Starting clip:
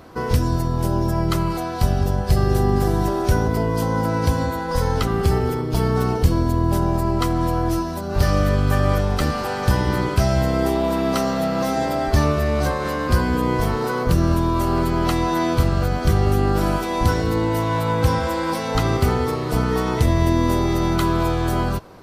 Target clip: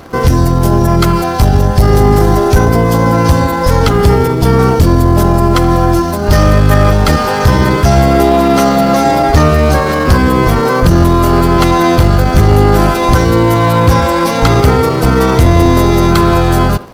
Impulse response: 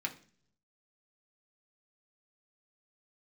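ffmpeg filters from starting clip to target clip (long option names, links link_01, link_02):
-filter_complex "[0:a]asetrate=57330,aresample=44100,asplit=2[link_01][link_02];[link_02]acrusher=bits=5:mix=0:aa=0.000001,volume=-10.5dB[link_03];[link_01][link_03]amix=inputs=2:normalize=0,asplit=2[link_04][link_05];[link_05]adelay=80,highpass=300,lowpass=3400,asoftclip=type=hard:threshold=-11dB,volume=-15dB[link_06];[link_04][link_06]amix=inputs=2:normalize=0,asetrate=35002,aresample=44100,atempo=1.25992,aeval=exprs='0.891*sin(PI/2*2*val(0)/0.891)':channel_layout=same"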